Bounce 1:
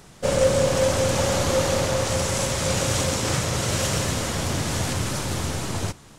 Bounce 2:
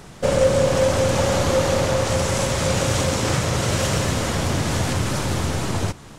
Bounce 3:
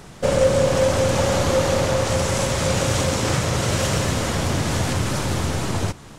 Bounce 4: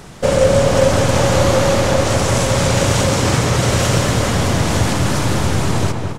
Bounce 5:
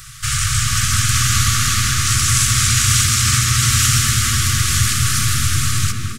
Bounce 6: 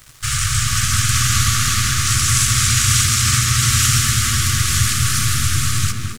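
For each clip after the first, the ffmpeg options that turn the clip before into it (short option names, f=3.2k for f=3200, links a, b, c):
-filter_complex "[0:a]highshelf=f=3.8k:g=-5.5,asplit=2[a][b];[b]acompressor=threshold=-29dB:ratio=6,volume=2dB[c];[a][c]amix=inputs=2:normalize=0"
-af anull
-filter_complex "[0:a]asplit=2[a][b];[b]adelay=209,lowpass=f=2.3k:p=1,volume=-4.5dB,asplit=2[c][d];[d]adelay=209,lowpass=f=2.3k:p=1,volume=0.47,asplit=2[e][f];[f]adelay=209,lowpass=f=2.3k:p=1,volume=0.47,asplit=2[g][h];[h]adelay=209,lowpass=f=2.3k:p=1,volume=0.47,asplit=2[i][j];[j]adelay=209,lowpass=f=2.3k:p=1,volume=0.47,asplit=2[k][l];[l]adelay=209,lowpass=f=2.3k:p=1,volume=0.47[m];[a][c][e][g][i][k][m]amix=inputs=7:normalize=0,volume=4.5dB"
-filter_complex "[0:a]afftfilt=real='re*(1-between(b*sr/4096,150,1100))':imag='im*(1-between(b*sr/4096,150,1100))':win_size=4096:overlap=0.75,asplit=4[a][b][c][d];[b]adelay=371,afreqshift=110,volume=-17dB[e];[c]adelay=742,afreqshift=220,volume=-26.9dB[f];[d]adelay=1113,afreqshift=330,volume=-36.8dB[g];[a][e][f][g]amix=inputs=4:normalize=0,crystalizer=i=2:c=0"
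-af "aeval=exprs='sgn(val(0))*max(abs(val(0))-0.0133,0)':c=same"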